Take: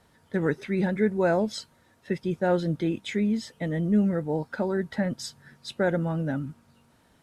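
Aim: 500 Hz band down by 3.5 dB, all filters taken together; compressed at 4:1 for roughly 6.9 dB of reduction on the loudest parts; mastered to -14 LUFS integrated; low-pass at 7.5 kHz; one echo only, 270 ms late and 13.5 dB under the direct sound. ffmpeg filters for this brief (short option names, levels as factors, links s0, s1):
-af "lowpass=7500,equalizer=f=500:t=o:g=-4.5,acompressor=threshold=0.0447:ratio=4,aecho=1:1:270:0.211,volume=8.41"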